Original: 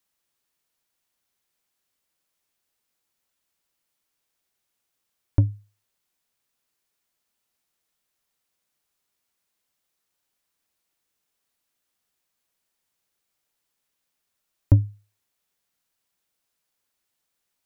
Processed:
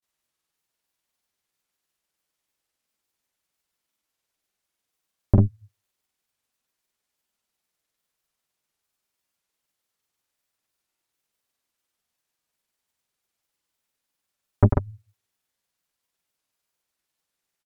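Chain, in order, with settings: added harmonics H 6 -8 dB, 8 -16 dB, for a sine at -5 dBFS; grains, pitch spread up and down by 0 st

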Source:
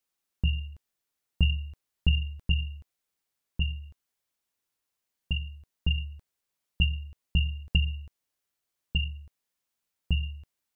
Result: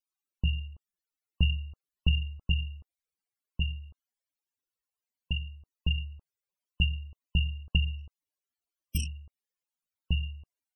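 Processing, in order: 7.98–9.07 self-modulated delay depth 0.7 ms; loudest bins only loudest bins 64; gain -1.5 dB

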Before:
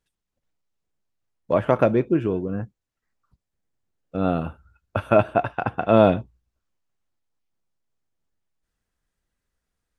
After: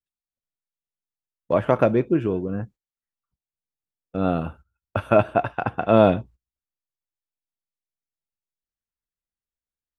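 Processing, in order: gate -43 dBFS, range -19 dB

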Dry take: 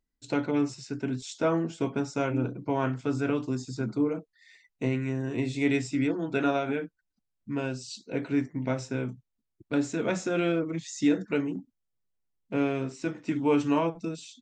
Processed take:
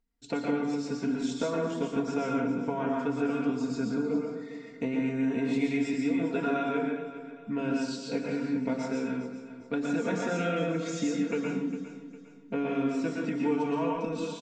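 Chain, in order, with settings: high shelf 5400 Hz -9 dB; comb 4.3 ms, depth 68%; compressor, threshold -28 dBFS, peak gain reduction 11.5 dB; feedback echo 0.405 s, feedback 37%, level -13.5 dB; plate-style reverb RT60 0.65 s, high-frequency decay 0.75×, pre-delay 0.105 s, DRR -1 dB

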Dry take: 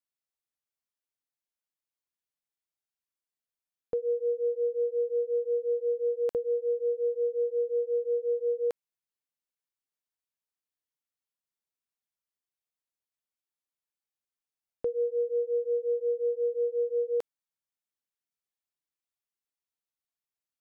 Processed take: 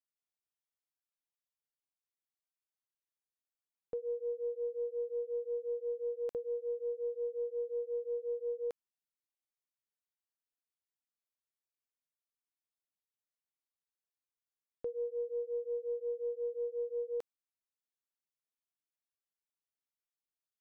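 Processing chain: tracing distortion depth 0.039 ms; gain -8.5 dB

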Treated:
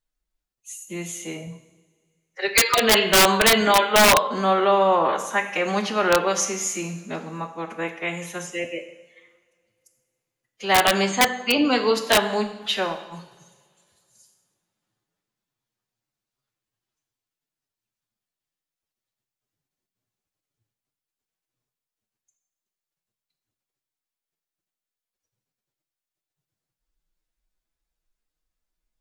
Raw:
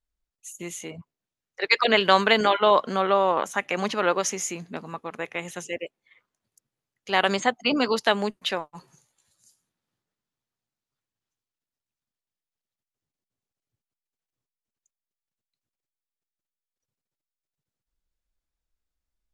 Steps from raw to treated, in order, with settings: time stretch by phase-locked vocoder 1.5×; two-slope reverb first 0.84 s, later 2.5 s, from -20 dB, DRR 5.5 dB; wrapped overs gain 10.5 dB; gain +2.5 dB

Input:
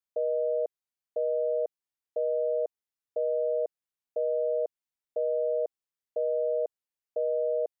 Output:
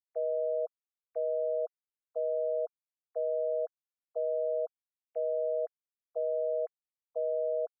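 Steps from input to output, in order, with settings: sine-wave speech; limiter -25 dBFS, peak gain reduction 4 dB

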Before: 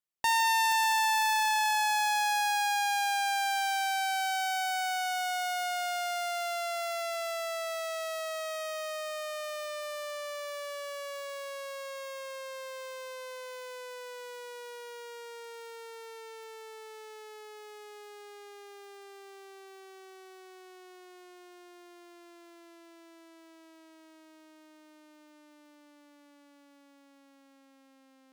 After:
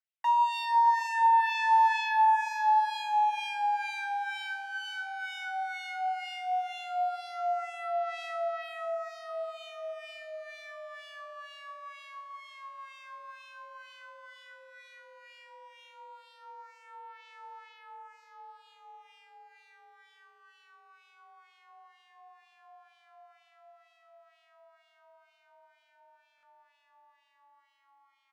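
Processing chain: comb 4.7 ms, depth 93%; frequency shift +43 Hz; ladder high-pass 610 Hz, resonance 50%; LFO band-pass sine 2.1 Hz 800–2900 Hz; feedback echo 0.608 s, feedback 38%, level -17.5 dB; stuck buffer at 26.36, samples 1024, times 2; gain +7.5 dB

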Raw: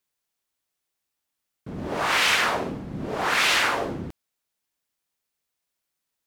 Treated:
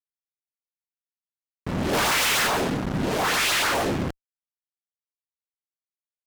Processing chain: 1.93–2.47 sample leveller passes 5; LFO notch saw up 7.1 Hz 340–3100 Hz; fuzz box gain 40 dB, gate -37 dBFS; gain -8 dB

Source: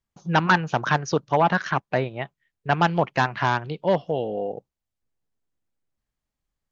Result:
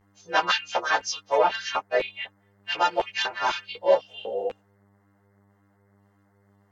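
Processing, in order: frequency quantiser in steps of 2 st; LFO high-pass square 2 Hz 490–2700 Hz; buzz 100 Hz, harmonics 21, -58 dBFS -5 dB/oct; ensemble effect; gain -1.5 dB

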